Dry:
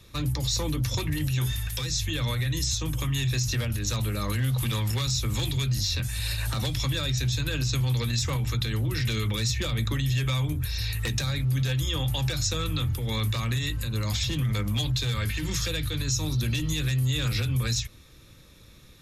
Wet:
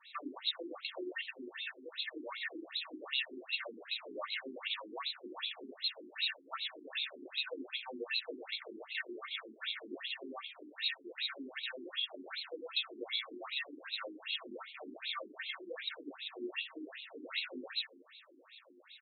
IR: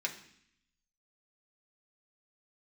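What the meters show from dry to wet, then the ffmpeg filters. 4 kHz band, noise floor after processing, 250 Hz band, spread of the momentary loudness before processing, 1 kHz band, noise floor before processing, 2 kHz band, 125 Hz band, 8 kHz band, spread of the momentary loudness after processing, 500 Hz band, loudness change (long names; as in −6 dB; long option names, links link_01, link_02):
−7.5 dB, −61 dBFS, −15.5 dB, 3 LU, −9.0 dB, −51 dBFS, −6.0 dB, below −40 dB, below −40 dB, 8 LU, −8.5 dB, −12.5 dB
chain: -filter_complex "[0:a]aeval=exprs='clip(val(0),-1,0.0501)':channel_layout=same,bass=frequency=250:gain=-14,treble=frequency=4000:gain=-4,acompressor=threshold=-36dB:ratio=6,aecho=1:1:274:0.126[link_01];[1:a]atrim=start_sample=2205,asetrate=79380,aresample=44100[link_02];[link_01][link_02]afir=irnorm=-1:irlink=0,afftfilt=real='re*between(b*sr/1024,280*pow(3100/280,0.5+0.5*sin(2*PI*2.6*pts/sr))/1.41,280*pow(3100/280,0.5+0.5*sin(2*PI*2.6*pts/sr))*1.41)':imag='im*between(b*sr/1024,280*pow(3100/280,0.5+0.5*sin(2*PI*2.6*pts/sr))/1.41,280*pow(3100/280,0.5+0.5*sin(2*PI*2.6*pts/sr))*1.41)':win_size=1024:overlap=0.75,volume=9.5dB"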